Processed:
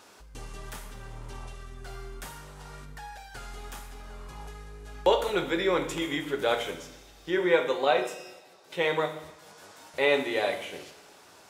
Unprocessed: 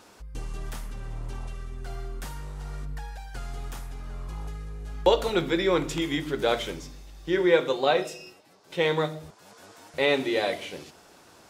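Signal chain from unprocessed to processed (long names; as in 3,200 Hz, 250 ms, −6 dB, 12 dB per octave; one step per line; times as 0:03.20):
low-shelf EQ 300 Hz −8.5 dB
coupled-rooms reverb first 0.73 s, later 2.3 s, DRR 6.5 dB
dynamic equaliser 4,700 Hz, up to −7 dB, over −49 dBFS, Q 1.5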